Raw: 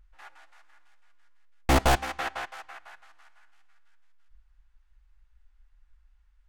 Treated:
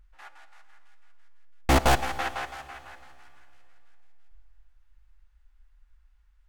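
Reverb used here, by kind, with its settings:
four-comb reverb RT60 2.8 s, combs from 29 ms, DRR 15 dB
level +1 dB

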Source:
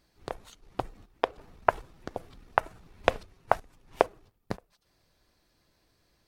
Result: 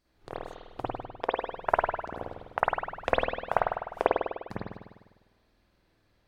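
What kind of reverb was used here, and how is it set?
spring reverb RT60 1.2 s, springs 50 ms, chirp 35 ms, DRR −9 dB
level −8.5 dB

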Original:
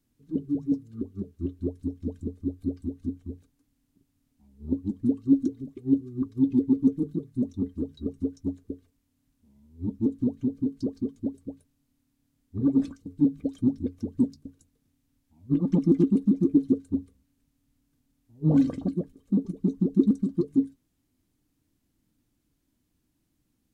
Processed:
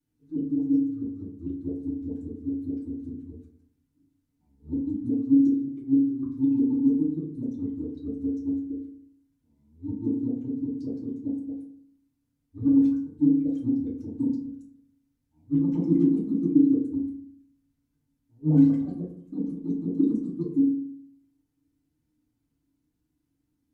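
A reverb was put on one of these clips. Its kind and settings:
feedback delay network reverb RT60 0.62 s, low-frequency decay 1.35×, high-frequency decay 0.45×, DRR −7.5 dB
level −14 dB

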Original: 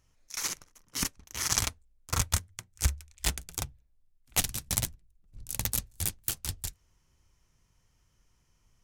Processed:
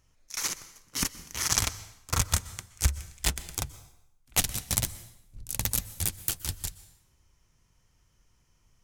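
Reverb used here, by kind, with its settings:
dense smooth reverb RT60 0.8 s, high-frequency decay 0.9×, pre-delay 110 ms, DRR 16.5 dB
level +2 dB

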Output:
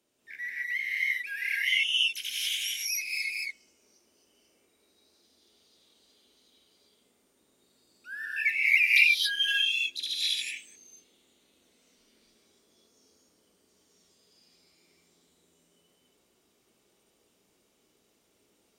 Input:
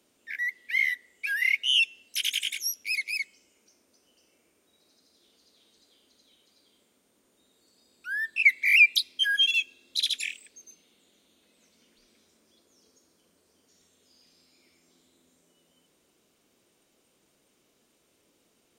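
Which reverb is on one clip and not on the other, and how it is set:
reverb whose tail is shaped and stops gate 300 ms rising, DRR −7 dB
level −9 dB

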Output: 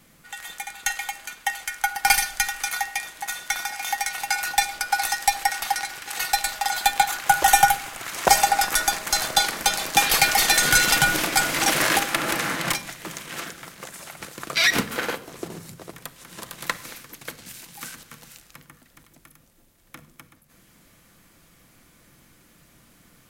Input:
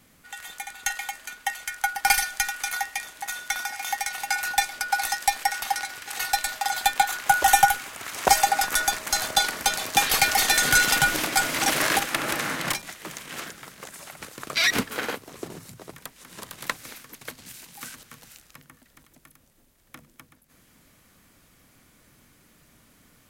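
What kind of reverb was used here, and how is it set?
rectangular room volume 2,200 cubic metres, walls furnished, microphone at 0.78 metres
level +2 dB

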